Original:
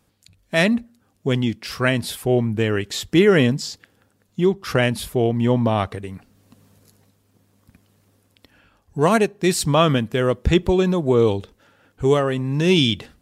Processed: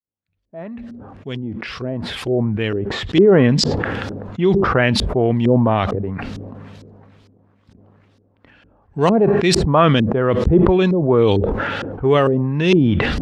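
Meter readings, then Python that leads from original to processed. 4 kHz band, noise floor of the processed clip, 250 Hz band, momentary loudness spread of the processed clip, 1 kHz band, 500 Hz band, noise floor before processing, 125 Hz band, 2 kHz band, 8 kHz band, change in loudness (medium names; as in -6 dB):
+0.5 dB, -60 dBFS, +3.0 dB, 17 LU, +4.0 dB, +3.0 dB, -64 dBFS, +3.5 dB, +1.0 dB, -1.5 dB, +3.0 dB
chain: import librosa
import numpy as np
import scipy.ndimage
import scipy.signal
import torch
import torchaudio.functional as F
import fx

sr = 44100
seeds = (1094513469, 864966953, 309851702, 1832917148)

y = fx.fade_in_head(x, sr, length_s=3.97)
y = fx.filter_lfo_lowpass(y, sr, shape='saw_up', hz=2.2, low_hz=340.0, high_hz=5200.0, q=1.5)
y = fx.sustainer(y, sr, db_per_s=23.0)
y = F.gain(torch.from_numpy(y), 1.0).numpy()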